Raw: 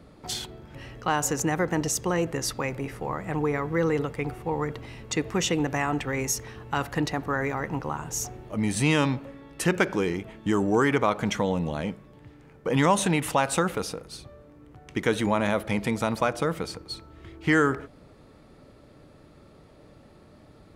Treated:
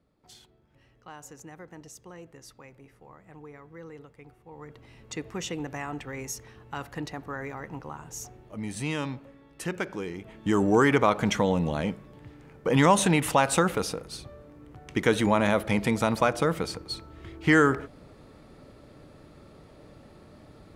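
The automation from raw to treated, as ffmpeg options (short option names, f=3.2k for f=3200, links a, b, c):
-af "volume=1.5dB,afade=t=in:st=4.48:d=0.62:silence=0.266073,afade=t=in:st=10.14:d=0.5:silence=0.316228"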